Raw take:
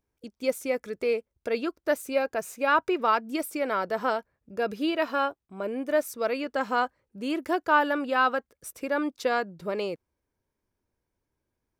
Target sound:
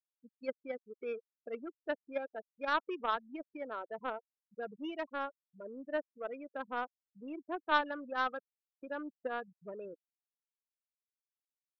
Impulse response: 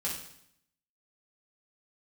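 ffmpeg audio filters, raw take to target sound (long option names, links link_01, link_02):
-af "afftfilt=real='re*gte(hypot(re,im),0.0794)':imag='im*gte(hypot(re,im),0.0794)':win_size=1024:overlap=0.75,aeval=exprs='0.316*(cos(1*acos(clip(val(0)/0.316,-1,1)))-cos(1*PI/2))+0.0708*(cos(3*acos(clip(val(0)/0.316,-1,1)))-cos(3*PI/2))':channel_layout=same,volume=-5dB"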